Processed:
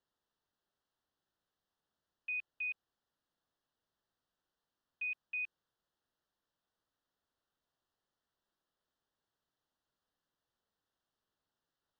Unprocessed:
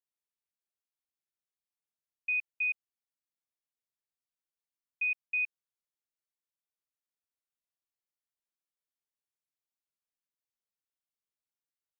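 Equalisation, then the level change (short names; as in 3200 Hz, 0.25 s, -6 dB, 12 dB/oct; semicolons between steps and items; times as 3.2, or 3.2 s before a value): Butterworth band-stop 2300 Hz, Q 2.2; air absorption 220 m; +13.5 dB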